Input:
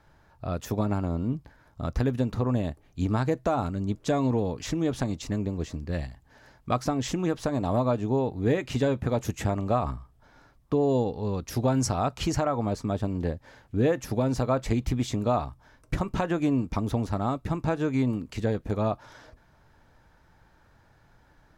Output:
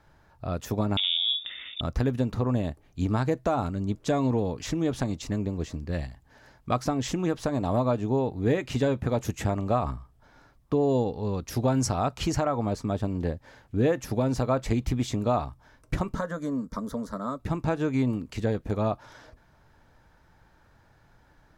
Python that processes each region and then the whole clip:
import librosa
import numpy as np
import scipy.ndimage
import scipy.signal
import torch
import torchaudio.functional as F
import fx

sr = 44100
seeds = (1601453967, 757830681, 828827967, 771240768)

y = fx.chain(x, sr, fx.freq_invert(carrier_hz=3600),
    fx.env_flatten(amount_pct=50), at=(0.97, 1.81))
y = fx.chain(y, sr, fx.low_shelf(hz=220.0, db=-4.5),
    fx.fixed_phaser(hz=520.0, stages=8), at=(16.15, 17.4))